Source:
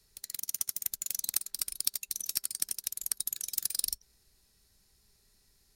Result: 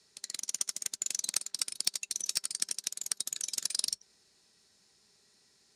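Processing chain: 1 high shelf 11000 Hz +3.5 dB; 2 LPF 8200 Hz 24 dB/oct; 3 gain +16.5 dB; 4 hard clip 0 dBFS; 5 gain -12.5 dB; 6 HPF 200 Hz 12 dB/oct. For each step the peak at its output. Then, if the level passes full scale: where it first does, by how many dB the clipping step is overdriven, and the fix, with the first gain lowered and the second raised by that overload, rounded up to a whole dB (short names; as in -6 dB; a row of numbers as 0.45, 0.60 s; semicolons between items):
-4.5, -10.5, +6.0, 0.0, -12.5, -12.0 dBFS; step 3, 6.0 dB; step 3 +10.5 dB, step 5 -6.5 dB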